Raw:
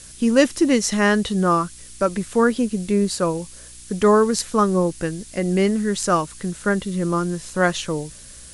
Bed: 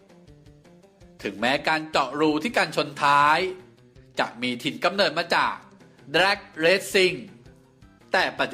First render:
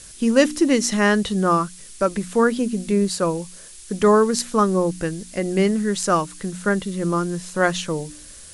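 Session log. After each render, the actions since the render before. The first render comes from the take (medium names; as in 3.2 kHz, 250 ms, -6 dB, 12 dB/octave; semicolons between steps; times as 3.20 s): de-hum 60 Hz, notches 5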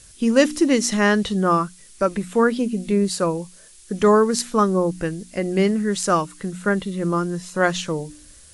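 noise print and reduce 6 dB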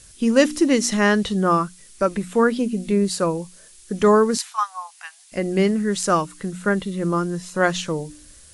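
4.37–5.32 s: rippled Chebyshev high-pass 730 Hz, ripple 3 dB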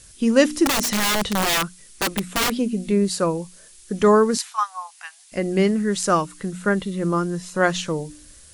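0.65–2.50 s: integer overflow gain 15.5 dB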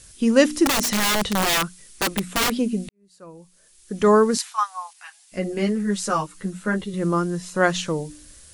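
2.89–4.16 s: fade in quadratic; 4.93–6.94 s: three-phase chorus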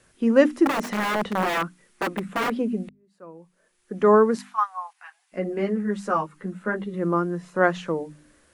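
three-band isolator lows -15 dB, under 160 Hz, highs -18 dB, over 2.2 kHz; hum notches 50/100/150/200/250/300 Hz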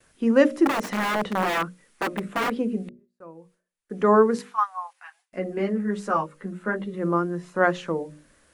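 gate with hold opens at -52 dBFS; hum notches 60/120/180/240/300/360/420/480/540/600 Hz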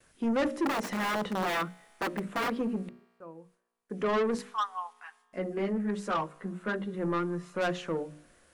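saturation -21 dBFS, distortion -7 dB; feedback comb 60 Hz, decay 2 s, harmonics all, mix 30%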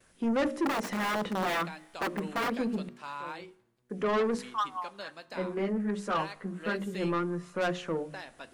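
add bed -22 dB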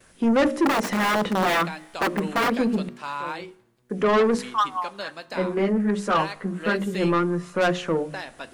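trim +8.5 dB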